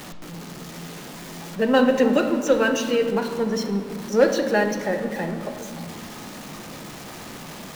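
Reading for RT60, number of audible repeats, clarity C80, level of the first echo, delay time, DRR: 2.2 s, none, 8.0 dB, none, none, 4.5 dB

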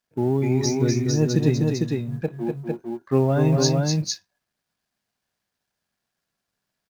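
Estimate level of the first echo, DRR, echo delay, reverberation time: -5.0 dB, none, 0.248 s, none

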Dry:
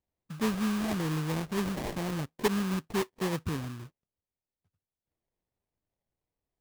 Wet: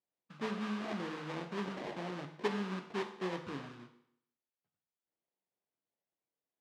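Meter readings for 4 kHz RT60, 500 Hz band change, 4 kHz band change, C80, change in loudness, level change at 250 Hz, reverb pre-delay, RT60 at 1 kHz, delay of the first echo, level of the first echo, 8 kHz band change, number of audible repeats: 0.65 s, -5.5 dB, -7.0 dB, 11.5 dB, -7.5 dB, -9.0 dB, 12 ms, 0.70 s, none, none, -16.5 dB, none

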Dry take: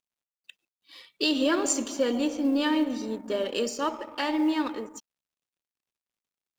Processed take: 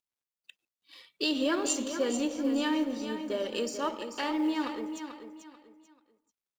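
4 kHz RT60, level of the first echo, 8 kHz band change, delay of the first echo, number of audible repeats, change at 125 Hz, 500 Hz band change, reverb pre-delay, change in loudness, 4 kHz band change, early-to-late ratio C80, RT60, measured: none, -9.0 dB, -3.5 dB, 0.439 s, 3, n/a, -3.5 dB, none, -4.0 dB, -3.5 dB, none, none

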